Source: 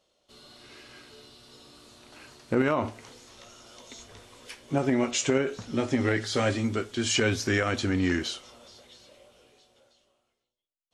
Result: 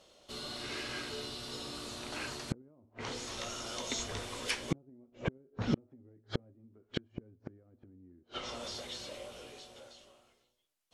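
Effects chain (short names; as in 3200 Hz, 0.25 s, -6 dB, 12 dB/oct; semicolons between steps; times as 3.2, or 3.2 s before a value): treble ducked by the level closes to 370 Hz, closed at -23 dBFS; flipped gate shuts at -27 dBFS, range -40 dB; gain +9.5 dB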